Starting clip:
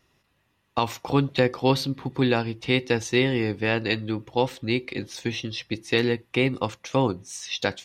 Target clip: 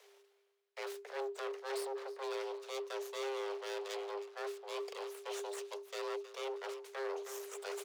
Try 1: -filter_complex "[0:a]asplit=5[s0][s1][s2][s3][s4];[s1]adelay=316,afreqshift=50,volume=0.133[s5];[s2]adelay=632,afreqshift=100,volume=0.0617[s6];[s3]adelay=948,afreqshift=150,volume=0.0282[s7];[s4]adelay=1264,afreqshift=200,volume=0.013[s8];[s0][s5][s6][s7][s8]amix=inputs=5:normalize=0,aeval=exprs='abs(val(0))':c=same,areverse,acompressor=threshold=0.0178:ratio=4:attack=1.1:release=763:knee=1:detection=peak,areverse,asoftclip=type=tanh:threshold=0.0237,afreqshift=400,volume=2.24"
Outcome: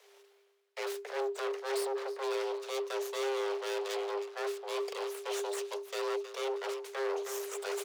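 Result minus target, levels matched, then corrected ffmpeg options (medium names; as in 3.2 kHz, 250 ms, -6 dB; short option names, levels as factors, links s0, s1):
compression: peak gain reduction -7.5 dB
-filter_complex "[0:a]asplit=5[s0][s1][s2][s3][s4];[s1]adelay=316,afreqshift=50,volume=0.133[s5];[s2]adelay=632,afreqshift=100,volume=0.0617[s6];[s3]adelay=948,afreqshift=150,volume=0.0282[s7];[s4]adelay=1264,afreqshift=200,volume=0.013[s8];[s0][s5][s6][s7][s8]amix=inputs=5:normalize=0,aeval=exprs='abs(val(0))':c=same,areverse,acompressor=threshold=0.00562:ratio=4:attack=1.1:release=763:knee=1:detection=peak,areverse,asoftclip=type=tanh:threshold=0.0237,afreqshift=400,volume=2.24"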